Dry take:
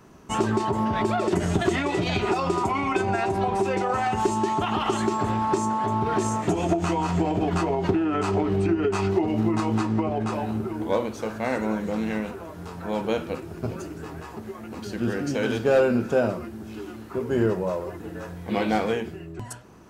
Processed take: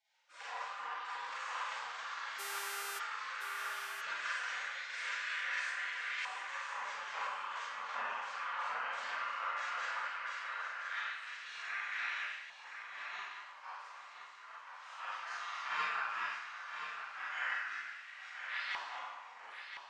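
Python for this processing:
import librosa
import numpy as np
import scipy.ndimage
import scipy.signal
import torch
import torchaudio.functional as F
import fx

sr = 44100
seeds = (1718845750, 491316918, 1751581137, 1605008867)

y = scipy.signal.sosfilt(scipy.signal.butter(4, 7500.0, 'lowpass', fs=sr, output='sos'), x)
y = fx.low_shelf(y, sr, hz=130.0, db=6.0)
y = fx.spec_gate(y, sr, threshold_db=-30, keep='weak')
y = fx.rev_schroeder(y, sr, rt60_s=0.83, comb_ms=32, drr_db=-7.0)
y = fx.filter_lfo_bandpass(y, sr, shape='saw_up', hz=0.16, low_hz=910.0, high_hz=1900.0, q=2.6)
y = fx.dmg_buzz(y, sr, base_hz=400.0, harmonics=34, level_db=-50.0, tilt_db=-1, odd_only=False, at=(2.38, 2.98), fade=0.02)
y = y + 10.0 ** (-8.5 / 20.0) * np.pad(y, (int(1020 * sr / 1000.0), 0))[:len(y)]
y = F.gain(torch.from_numpy(y), 4.5).numpy()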